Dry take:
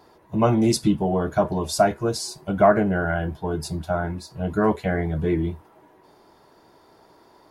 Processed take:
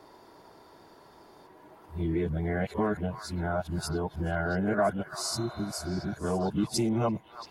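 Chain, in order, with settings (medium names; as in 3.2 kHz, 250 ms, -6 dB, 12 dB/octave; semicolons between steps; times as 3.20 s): reverse the whole clip; compression 2:1, threshold -31 dBFS, peak gain reduction 11 dB; repeats whose band climbs or falls 339 ms, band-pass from 1.3 kHz, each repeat 1.4 oct, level -7.5 dB; spectral replace 5.26–6.11 s, 400–4200 Hz both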